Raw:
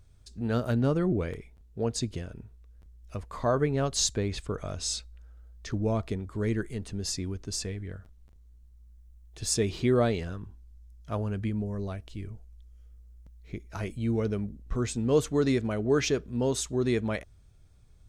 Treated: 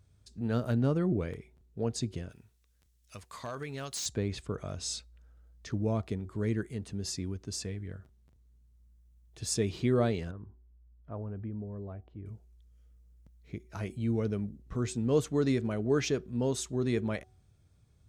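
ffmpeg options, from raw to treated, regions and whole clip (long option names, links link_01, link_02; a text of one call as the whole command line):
ffmpeg -i in.wav -filter_complex "[0:a]asettb=1/sr,asplit=3[link_01][link_02][link_03];[link_01]atrim=end=2.304[link_04];[link_02]atrim=start=2.3:end=4.06,asetpts=PTS-STARTPTS,afade=type=in:duration=0.004:curve=qsin,afade=type=out:start_time=1.756:duration=0.004:curve=qsin,tiltshelf=frequency=1400:gain=-10,acompressor=threshold=-31dB:ratio=3:attack=3.2:release=140:knee=1:detection=peak,aeval=exprs='0.0473*(abs(mod(val(0)/0.0473+3,4)-2)-1)':channel_layout=same[link_05];[link_03]atrim=start=4.056[link_06];[link_04][link_05]acrossfade=duration=0.004:curve1=hsin:curve2=qsin[link_07];[link_07][link_06]acrossfade=duration=0.004:curve1=qsin:curve2=hsin,asettb=1/sr,asplit=3[link_08][link_09][link_10];[link_08]atrim=end=10.314[link_11];[link_09]atrim=start=10.31:end=12.26,asetpts=PTS-STARTPTS,afade=type=in:duration=0.004:curve=qsin,afade=type=out:start_time=1.946:duration=0.004:curve=qsin,lowpass=1100,equalizer=frequency=160:width=1.4:gain=-5,acompressor=threshold=-38dB:ratio=1.5:attack=3.2:release=140:knee=1:detection=peak[link_12];[link_10]atrim=start=12.256[link_13];[link_11][link_12]acrossfade=duration=0.004:curve1=hsin:curve2=qsin[link_14];[link_14][link_13]acrossfade=duration=0.004:curve1=qsin:curve2=hsin,highpass=91,lowshelf=frequency=220:gain=5.5,bandreject=frequency=374.4:width_type=h:width=4,bandreject=frequency=748.8:width_type=h:width=4,volume=-4.5dB" out.wav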